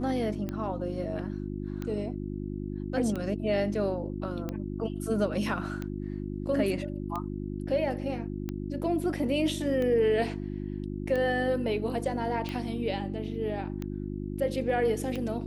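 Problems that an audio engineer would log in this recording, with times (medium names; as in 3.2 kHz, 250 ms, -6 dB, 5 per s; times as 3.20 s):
hum 50 Hz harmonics 7 -35 dBFS
tick 45 rpm -21 dBFS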